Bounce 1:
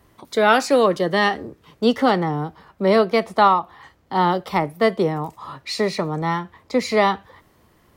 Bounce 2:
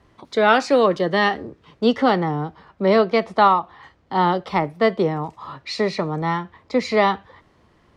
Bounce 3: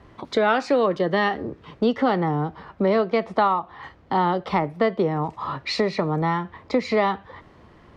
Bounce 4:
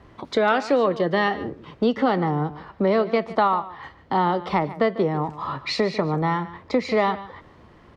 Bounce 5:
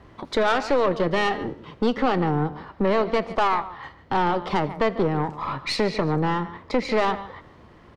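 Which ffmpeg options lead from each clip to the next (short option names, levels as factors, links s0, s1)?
-af "lowpass=5200"
-af "highshelf=f=4800:g=-10.5,acompressor=threshold=0.0355:ratio=2.5,volume=2.24"
-af "aecho=1:1:147:0.158"
-filter_complex "[0:a]aeval=exprs='(tanh(7.94*val(0)+0.55)-tanh(0.55))/7.94':c=same,asplit=5[s0][s1][s2][s3][s4];[s1]adelay=80,afreqshift=38,volume=0.0708[s5];[s2]adelay=160,afreqshift=76,volume=0.038[s6];[s3]adelay=240,afreqshift=114,volume=0.0207[s7];[s4]adelay=320,afreqshift=152,volume=0.0111[s8];[s0][s5][s6][s7][s8]amix=inputs=5:normalize=0,volume=1.41"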